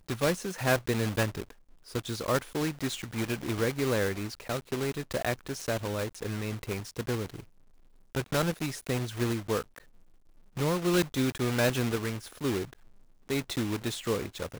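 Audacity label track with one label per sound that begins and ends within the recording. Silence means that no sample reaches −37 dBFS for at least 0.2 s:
1.900000	7.400000	sound
8.150000	9.780000	sound
10.570000	12.730000	sound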